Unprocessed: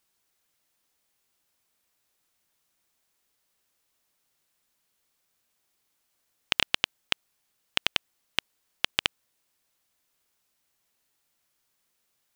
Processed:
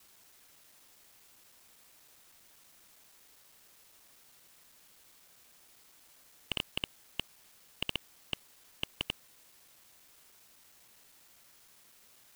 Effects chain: time reversed locally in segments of 80 ms; slew-rate limiter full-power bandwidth 41 Hz; trim +14.5 dB

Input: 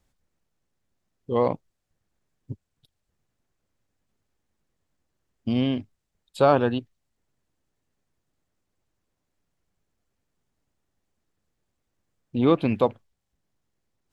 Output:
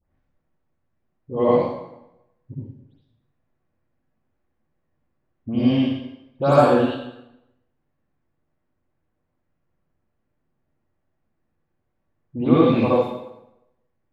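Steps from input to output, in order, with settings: delay that grows with frequency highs late, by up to 166 ms; level-controlled noise filter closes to 1.9 kHz, open at -19 dBFS; reverberation RT60 0.90 s, pre-delay 53 ms, DRR -7 dB; trim -3 dB

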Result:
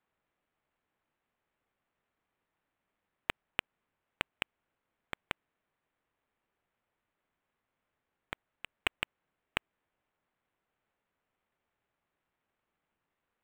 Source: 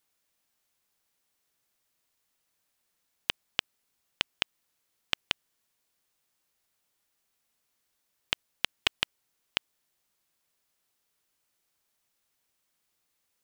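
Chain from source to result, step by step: treble shelf 8.7 kHz -9.5 dB; decimation joined by straight lines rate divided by 8×; trim -2 dB

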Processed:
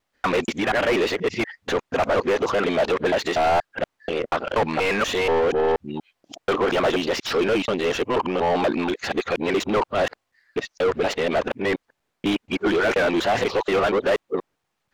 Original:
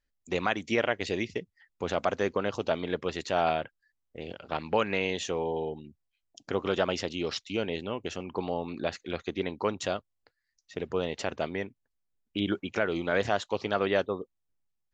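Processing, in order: time reversed locally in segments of 240 ms; overdrive pedal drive 32 dB, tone 1.4 kHz, clips at -11 dBFS

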